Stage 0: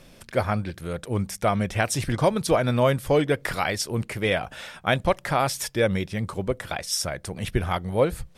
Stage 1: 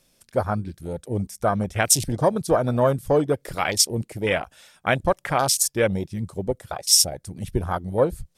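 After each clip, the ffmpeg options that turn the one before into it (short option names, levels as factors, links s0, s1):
-af "bass=f=250:g=-2,treble=f=4000:g=12,afwtdn=0.0501,volume=1.19"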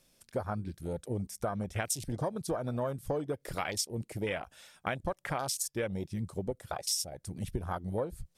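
-af "acompressor=threshold=0.0501:ratio=6,volume=0.596"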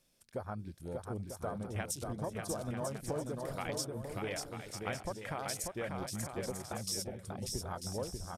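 -af "aecho=1:1:590|944|1156|1284|1360:0.631|0.398|0.251|0.158|0.1,volume=0.501"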